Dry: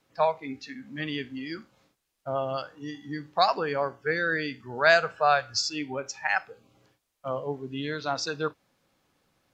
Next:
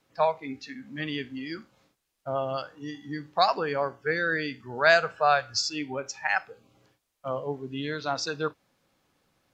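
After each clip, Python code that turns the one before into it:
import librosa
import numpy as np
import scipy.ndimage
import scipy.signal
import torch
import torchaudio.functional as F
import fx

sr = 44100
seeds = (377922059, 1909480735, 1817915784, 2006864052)

y = x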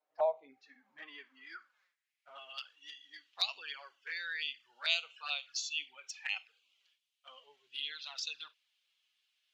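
y = fx.tilt_eq(x, sr, slope=4.0)
y = fx.filter_sweep_bandpass(y, sr, from_hz=660.0, to_hz=3000.0, start_s=0.5, end_s=2.64, q=3.7)
y = fx.env_flanger(y, sr, rest_ms=6.7, full_db=-33.0)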